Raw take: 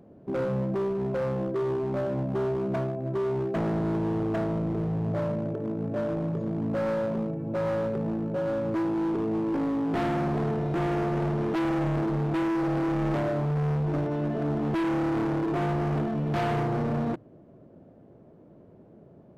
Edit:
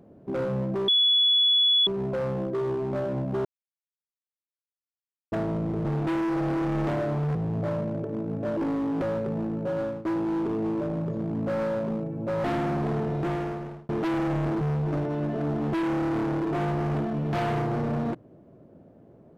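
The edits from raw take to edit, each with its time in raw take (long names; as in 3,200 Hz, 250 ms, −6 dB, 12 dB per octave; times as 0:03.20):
0:00.88: insert tone 3,400 Hz −17.5 dBFS 0.99 s
0:02.46–0:04.33: silence
0:06.08–0:07.71: swap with 0:09.50–0:09.95
0:08.44–0:08.74: fade out equal-power, to −17.5 dB
0:10.73–0:11.40: fade out
0:12.12–0:13.62: move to 0:04.86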